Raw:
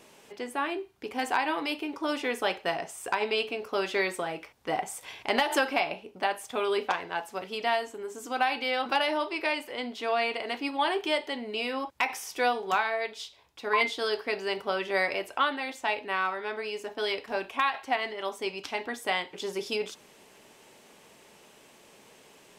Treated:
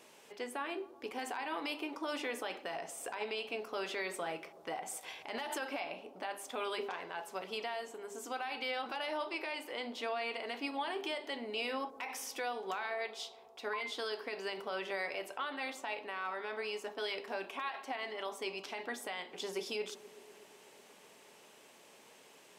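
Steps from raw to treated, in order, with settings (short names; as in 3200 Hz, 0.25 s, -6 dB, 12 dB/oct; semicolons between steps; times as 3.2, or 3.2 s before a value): HPF 230 Hz 6 dB/oct; notches 50/100/150/200/250/300/350/400 Hz; compressor, threshold -28 dBFS, peak gain reduction 8 dB; limiter -24.5 dBFS, peak gain reduction 11.5 dB; analogue delay 0.123 s, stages 1024, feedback 80%, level -18 dB; gain -3.5 dB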